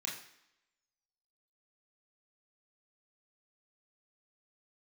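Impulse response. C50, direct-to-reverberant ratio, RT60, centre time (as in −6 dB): 6.5 dB, −4.0 dB, 0.80 s, 36 ms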